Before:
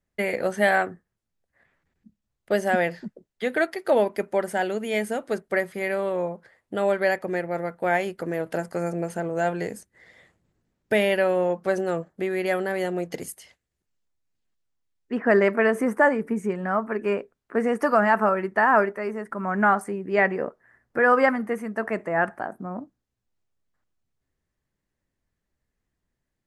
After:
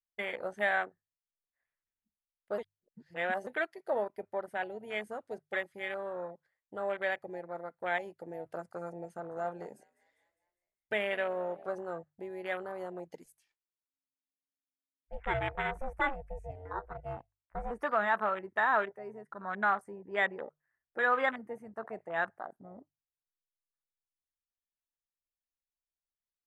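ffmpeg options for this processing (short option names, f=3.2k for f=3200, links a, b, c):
-filter_complex "[0:a]asettb=1/sr,asplit=3[a][b][c];[a]atrim=end=4.084[d];[b]atrim=start=4.08:end=4.88,asetpts=PTS-STARTPTS,afade=t=in:d=0.004:c=qsin,afade=t=out:st=0.796:d=0.004:c=qsin,equalizer=f=6.9k:t=o:w=0.77:g=-8.5[e];[c]atrim=start=4.876[f];[d][e]acrossfade=d=0.004:c1=hsin:c2=qsin[g];[g][f]acrossfade=d=0.004:c1=qsin:c2=hsin,asettb=1/sr,asplit=3[h][i][j];[h]atrim=end=9.114[k];[i]atrim=start=9.11:end=11.73,asetpts=PTS-STARTPTS,afade=t=in:d=0.004:c=qsin,afade=t=out:st=2.616:d=0.004:c=qsin,asplit=6[l][m][n][o][p][q];[m]adelay=202,afreqshift=36,volume=-17.5dB[r];[n]adelay=404,afreqshift=72,volume=-22.5dB[s];[o]adelay=606,afreqshift=108,volume=-27.6dB[t];[p]adelay=808,afreqshift=144,volume=-32.6dB[u];[q]adelay=1010,afreqshift=180,volume=-37.6dB[v];[l][r][s][t][u][v]amix=inputs=6:normalize=0,atrim=end_sample=115542[w];[j]atrim=start=11.726[x];[k][w]acrossfade=d=0.004:c1=hsin:c2=qsin[y];[y][x]acrossfade=d=0.004:c1=qsin:c2=hsin,asettb=1/sr,asplit=3[z][aa][ab];[z]atrim=end=13.244[ac];[aa]atrim=start=13.24:end=17.71,asetpts=PTS-STARTPTS,afade=t=in:d=0.004:c=qsin,afade=t=out:st=4.466:d=0.004:c=qsin,aeval=exprs='val(0)*sin(2*PI*270*n/s)':c=same[ad];[ab]atrim=start=17.706[ae];[ac][ad]acrossfade=d=0.004:c1=hsin:c2=qsin[af];[af][ae]acrossfade=d=0.004:c1=qsin:c2=hsin,asplit=3[ag][ah][ai];[ag]atrim=end=2.582[aj];[ah]atrim=start=2.578:end=3.472,asetpts=PTS-STARTPTS,areverse[ak];[ai]atrim=start=3.468[al];[aj][ak]acrossfade=d=0.004:c1=hsin:c2=hsin[am];[am][al]acrossfade=d=0.004:c1=hsin:c2=hsin,afwtdn=0.0398,equalizer=f=210:t=o:w=2.8:g=-12,bandreject=f=50:t=h:w=6,bandreject=f=100:t=h:w=6,bandreject=f=150:t=h:w=6,volume=-6dB"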